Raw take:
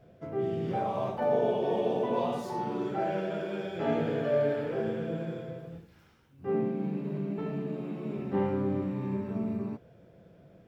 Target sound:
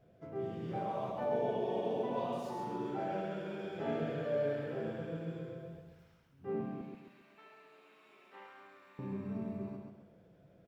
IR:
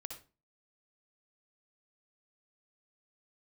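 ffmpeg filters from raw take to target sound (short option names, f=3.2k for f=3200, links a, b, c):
-filter_complex "[0:a]asettb=1/sr,asplit=3[a][b][c];[a]atrim=end=6.814[d];[b]atrim=start=6.81:end=8.99,asetpts=PTS-STARTPTS,afade=t=in:d=0.004:c=qsin,afade=t=out:st=2.176:d=0.004:c=qsin,highpass=1.4k[e];[c]atrim=start=8.986[f];[d][e]acrossfade=d=0.004:c1=hsin:c2=qsin[g];[g][f]acrossfade=d=0.004:c1=qsin:c2=hsin,aecho=1:1:134|268|402|536|670:0.596|0.244|0.1|0.0411|0.0168,volume=-8dB"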